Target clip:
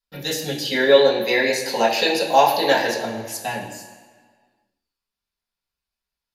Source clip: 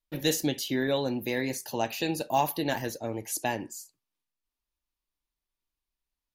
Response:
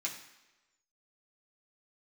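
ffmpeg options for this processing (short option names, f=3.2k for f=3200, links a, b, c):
-filter_complex "[0:a]asettb=1/sr,asplit=3[a][b][c];[a]atrim=end=0.654[d];[b]atrim=start=0.65:end=3.05,asetpts=PTS-STARTPTS,afade=t=in:d=0.004:c=qsin,afade=t=out:st=2.396:d=0.004:c=qsin,equalizer=f=125:t=o:w=1:g=-8,equalizer=f=250:t=o:w=1:g=4,equalizer=f=500:t=o:w=1:g=10,equalizer=f=1k:t=o:w=1:g=4,equalizer=f=2k:t=o:w=1:g=7,equalizer=f=4k:t=o:w=1:g=7,equalizer=f=8k:t=o:w=1:g=5[e];[c]atrim=start=3.046[f];[d][e]acrossfade=d=0.004:c1=hsin:c2=qsin[g];[g][f]acrossfade=d=0.004:c1=qsin:c2=hsin[h];[1:a]atrim=start_sample=2205,asetrate=29106,aresample=44100[i];[h][i]afir=irnorm=-1:irlink=0"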